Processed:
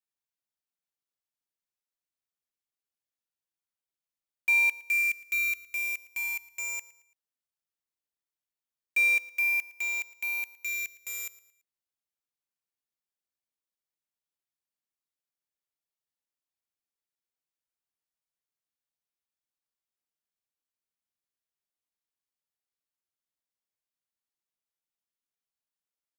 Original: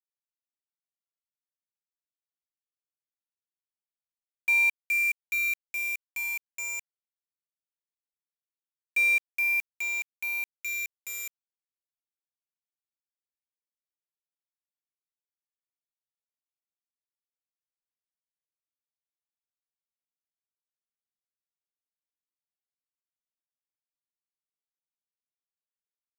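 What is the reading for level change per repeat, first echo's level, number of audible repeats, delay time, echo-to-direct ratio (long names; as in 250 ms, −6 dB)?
−8.5 dB, −19.0 dB, 2, 112 ms, −18.5 dB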